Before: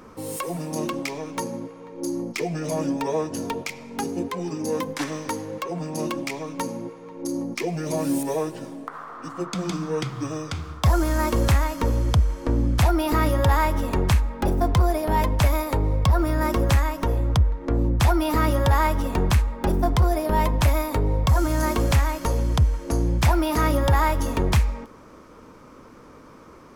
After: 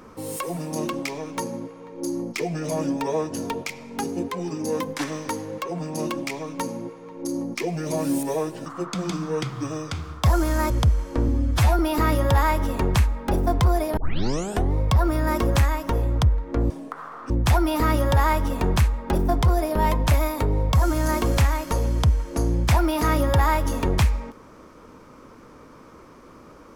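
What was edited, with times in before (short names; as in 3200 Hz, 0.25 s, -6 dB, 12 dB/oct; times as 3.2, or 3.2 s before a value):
8.66–9.26 move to 17.84
11.3–12.01 cut
12.59–12.93 stretch 1.5×
15.11 tape start 0.78 s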